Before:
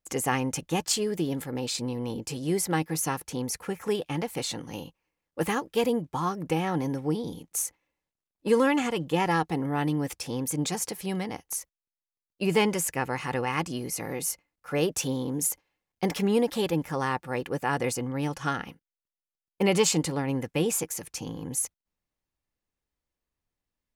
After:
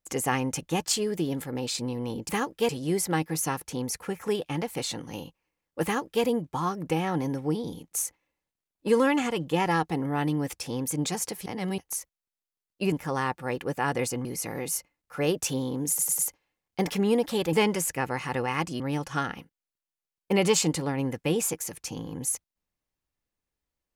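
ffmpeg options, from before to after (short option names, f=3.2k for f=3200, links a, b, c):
-filter_complex "[0:a]asplit=12[a][b][c][d][e][f][g][h][i][j][k][l];[a]atrim=end=2.292[m];[b]atrim=start=5.438:end=5.842[n];[c]atrim=start=2.288:end=11.062[o];[d]atrim=start=11.058:end=11.382,asetpts=PTS-STARTPTS,areverse[p];[e]atrim=start=11.378:end=12.522[q];[f]atrim=start=16.768:end=18.102[r];[g]atrim=start=13.788:end=15.532[s];[h]atrim=start=15.428:end=15.532[t];[i]atrim=start=15.428:end=15.532[u];[j]atrim=start=15.428:end=16.772[v];[k]atrim=start=12.518:end=13.792[w];[l]atrim=start=18.098[x];[m][n]acrossfade=d=0.004:c1=hsin:c2=hsin[y];[y][o]acrossfade=d=0.004:c1=hsin:c2=hsin[z];[z][p]acrossfade=d=0.004:c1=hsin:c2=hsin[aa];[aa][q]acrossfade=d=0.004:c1=hsin:c2=hsin[ab];[ab][r]acrossfade=d=0.004:c1=hsin:c2=hsin[ac];[ac][s]acrossfade=d=0.004:c1=hsin:c2=hsin[ad];[ad][t]acrossfade=d=0.004:c1=hsin:c2=hsin[ae];[ae][u]acrossfade=d=0.004:c1=hsin:c2=hsin[af];[af][v]acrossfade=d=0.004:c1=hsin:c2=hsin[ag];[ag][w]acrossfade=d=0.004:c1=hsin:c2=hsin[ah];[ah][x]acrossfade=d=0.004:c1=hsin:c2=hsin"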